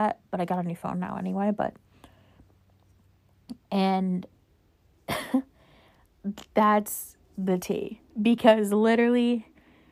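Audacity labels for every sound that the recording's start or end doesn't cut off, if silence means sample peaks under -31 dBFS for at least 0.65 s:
3.510000	4.250000	sound
5.090000	5.400000	sound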